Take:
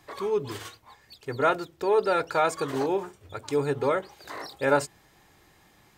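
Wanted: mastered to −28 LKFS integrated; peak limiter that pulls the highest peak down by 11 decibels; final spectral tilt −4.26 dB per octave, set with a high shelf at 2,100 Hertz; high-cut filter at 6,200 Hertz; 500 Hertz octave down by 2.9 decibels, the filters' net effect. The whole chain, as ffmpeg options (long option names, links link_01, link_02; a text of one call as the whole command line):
ffmpeg -i in.wav -af "lowpass=6200,equalizer=frequency=500:width_type=o:gain=-4,highshelf=frequency=2100:gain=7,volume=4.5dB,alimiter=limit=-15.5dB:level=0:latency=1" out.wav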